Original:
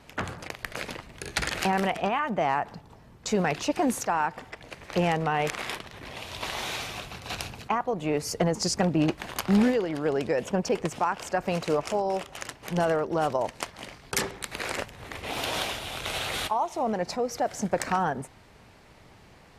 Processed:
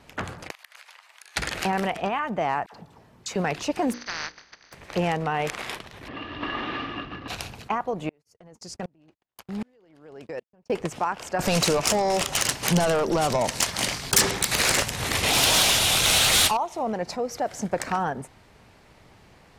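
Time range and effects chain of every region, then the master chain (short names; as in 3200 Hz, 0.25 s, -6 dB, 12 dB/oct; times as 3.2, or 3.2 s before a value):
0.51–1.36 HPF 870 Hz 24 dB/oct + compressor, threshold -44 dBFS
2.66–3.36 HPF 130 Hz 6 dB/oct + dispersion lows, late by 67 ms, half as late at 1000 Hz
3.92–4.72 spectral contrast lowered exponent 0.15 + rippled Chebyshev low-pass 6300 Hz, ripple 9 dB + notches 60/120/180/240/300/360/420/480/540 Hz
6.08–7.28 CVSD 32 kbps + air absorption 330 m + small resonant body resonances 290/1200/1700/2800 Hz, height 17 dB
8.09–10.7 gate -33 dBFS, range -41 dB + compressor 2.5:1, threshold -30 dBFS + dB-ramp tremolo swelling 1.3 Hz, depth 35 dB
11.39–16.57 compressor 2:1, threshold -33 dBFS + overdrive pedal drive 21 dB, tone 5900 Hz, clips at -13.5 dBFS + tone controls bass +14 dB, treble +14 dB
whole clip: dry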